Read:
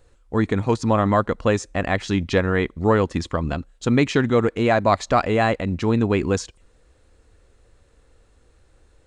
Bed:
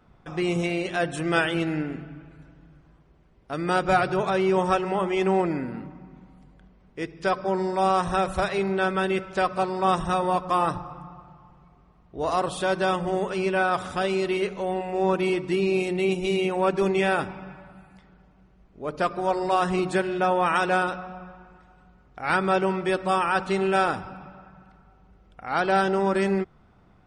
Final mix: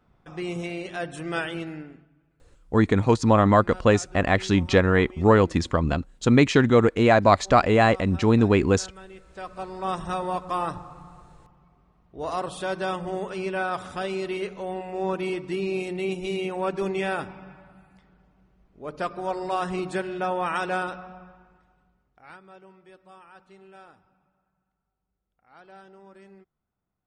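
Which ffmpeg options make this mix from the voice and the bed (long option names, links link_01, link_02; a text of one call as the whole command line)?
ffmpeg -i stem1.wav -i stem2.wav -filter_complex "[0:a]adelay=2400,volume=1dB[link_01];[1:a]volume=10dB,afade=type=out:start_time=1.51:duration=0.58:silence=0.188365,afade=type=in:start_time=9.23:duration=0.88:silence=0.158489,afade=type=out:start_time=21.07:duration=1.32:silence=0.0749894[link_02];[link_01][link_02]amix=inputs=2:normalize=0" out.wav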